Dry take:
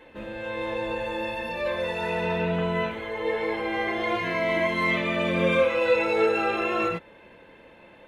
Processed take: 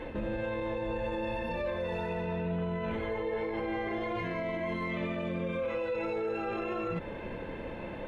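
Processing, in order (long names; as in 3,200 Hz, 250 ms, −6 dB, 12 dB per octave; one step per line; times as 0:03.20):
reversed playback
downward compressor, threshold −38 dBFS, peak gain reduction 19.5 dB
reversed playback
spectral tilt −2.5 dB per octave
brickwall limiter −34.5 dBFS, peak gain reduction 9 dB
level +8.5 dB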